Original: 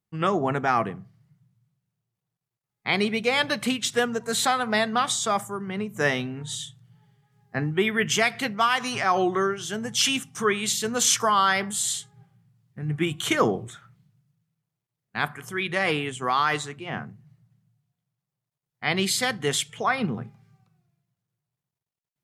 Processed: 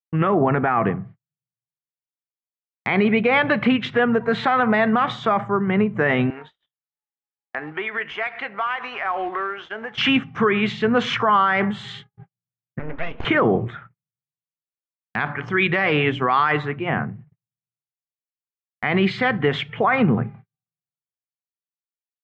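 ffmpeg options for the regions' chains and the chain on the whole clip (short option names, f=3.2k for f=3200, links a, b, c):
-filter_complex "[0:a]asettb=1/sr,asplit=3[a][b][c];[a]atrim=end=6.304[d];[b]atrim=start=6.3:end=9.98,asetpts=PTS-STARTPTS,afade=t=in:d=0.004:c=qsin,afade=t=out:st=3.676:d=0.004:c=qsin,highpass=620,acompressor=threshold=-38dB:ratio=2.5:attack=3.2:release=140:knee=1:detection=peak,acrusher=bits=3:mode=log:mix=0:aa=0.000001[e];[c]atrim=start=9.976[f];[d][e]acrossfade=d=0.004:c1=hsin:c2=qsin[g];[g][f]acrossfade=d=0.004:c1=qsin:c2=hsin,asettb=1/sr,asplit=3[h][i][j];[h]atrim=end=12.794[k];[i]atrim=start=12.79:end=13.25,asetpts=PTS-STARTPTS,afade=t=in:d=0.004:c=qsin,afade=t=out:st=0.456:d=0.004:c=qsin,equalizer=f=160:t=o:w=0.83:g=-12,acompressor=threshold=-36dB:ratio=2:attack=3.2:release=140:knee=1:detection=peak,aeval=exprs='abs(val(0))':c=same[l];[j]atrim=start=13.246[m];[k][l]acrossfade=d=0.004:c1=hsin:c2=qsin[n];[n][m]acrossfade=d=0.004:c1=qsin:c2=hsin,asettb=1/sr,asplit=3[o][p][q];[o]atrim=end=15.204[r];[p]atrim=start=15.2:end=16.52,asetpts=PTS-STARTPTS,afade=t=in:d=0.004:c=qsin,afade=t=out:st=1.316:d=0.004:c=qsin,equalizer=f=5.3k:t=o:w=1.2:g=11.5,bandreject=f=288.1:t=h:w=4,bandreject=f=576.2:t=h:w=4,bandreject=f=864.3:t=h:w=4[s];[q]atrim=start=16.516[t];[r][s]acrossfade=d=0.004:c1=hsin:c2=qsin[u];[u][t]acrossfade=d=0.004:c1=qsin:c2=hsin,lowpass=f=2.4k:w=0.5412,lowpass=f=2.4k:w=1.3066,agate=range=-46dB:threshold=-50dB:ratio=16:detection=peak,alimiter=level_in=19.5dB:limit=-1dB:release=50:level=0:latency=1,volume=-8dB"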